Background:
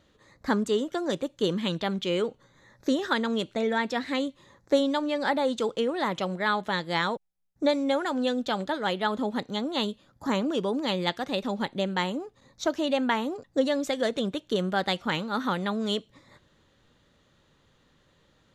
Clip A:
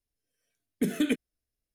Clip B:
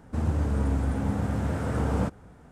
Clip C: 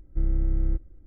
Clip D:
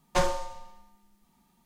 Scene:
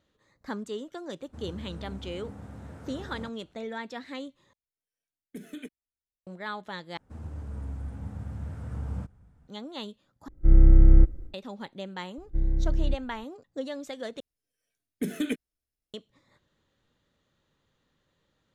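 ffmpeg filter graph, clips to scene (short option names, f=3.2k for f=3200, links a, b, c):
-filter_complex "[2:a]asplit=2[a][b];[1:a]asplit=2[c][d];[3:a]asplit=2[e][f];[0:a]volume=-10dB[g];[b]asubboost=boost=6.5:cutoff=170[h];[e]dynaudnorm=f=120:g=3:m=14.5dB[i];[f]bandreject=f=1.3k:w=17[j];[g]asplit=5[k][l][m][n][o];[k]atrim=end=4.534[p];[c]atrim=end=1.74,asetpts=PTS-STARTPTS,volume=-14.5dB[q];[l]atrim=start=6.266:end=6.974[r];[h]atrim=end=2.51,asetpts=PTS-STARTPTS,volume=-16dB[s];[m]atrim=start=9.476:end=10.284[t];[i]atrim=end=1.06,asetpts=PTS-STARTPTS,volume=-3dB[u];[n]atrim=start=11.336:end=14.204[v];[d]atrim=end=1.74,asetpts=PTS-STARTPTS,volume=-3dB[w];[o]atrim=start=15.936[x];[a]atrim=end=2.51,asetpts=PTS-STARTPTS,volume=-16dB,afade=t=in:d=0.004:c=hsin,afade=t=out:st=2.506:d=0.004:c=hsin,adelay=1200[y];[j]atrim=end=1.06,asetpts=PTS-STARTPTS,volume=-1.5dB,afade=t=in:d=0.004:c=hsin,afade=t=out:st=1.056:d=0.004:c=hsin,adelay=12180[z];[p][q]acrossfade=d=0.004:c1=hsin:c2=hsin[aa];[aa][r]acrossfade=d=0.004:c1=hsin:c2=hsin[ab];[ab][s]acrossfade=d=0.004:c1=hsin:c2=hsin[ac];[ac][t]acrossfade=d=0.004:c1=hsin:c2=hsin[ad];[ad][u]acrossfade=d=0.004:c1=hsin:c2=hsin[ae];[ae][v]acrossfade=d=0.004:c1=hsin:c2=hsin[af];[af][w]acrossfade=d=0.004:c1=hsin:c2=hsin[ag];[ag][x]acrossfade=d=0.004:c1=hsin:c2=hsin[ah];[ah][y][z]amix=inputs=3:normalize=0"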